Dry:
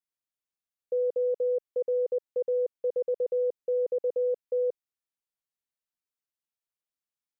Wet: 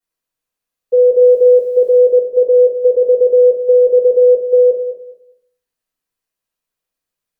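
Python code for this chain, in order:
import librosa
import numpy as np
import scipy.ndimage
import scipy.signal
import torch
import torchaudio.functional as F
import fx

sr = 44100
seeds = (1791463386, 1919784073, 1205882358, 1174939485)

p1 = fx.quant_dither(x, sr, seeds[0], bits=12, dither='triangular', at=(1.21, 1.98))
p2 = p1 + fx.echo_feedback(p1, sr, ms=204, feedback_pct=22, wet_db=-10.0, dry=0)
y = fx.room_shoebox(p2, sr, seeds[1], volume_m3=41.0, walls='mixed', distance_m=2.1)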